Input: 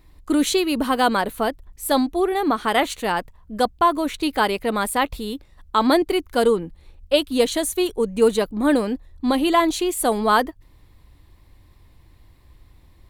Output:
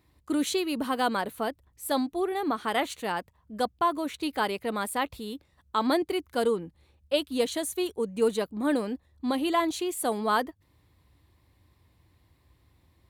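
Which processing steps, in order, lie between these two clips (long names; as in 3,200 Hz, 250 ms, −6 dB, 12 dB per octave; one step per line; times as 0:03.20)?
high-pass filter 64 Hz 24 dB per octave
level −8 dB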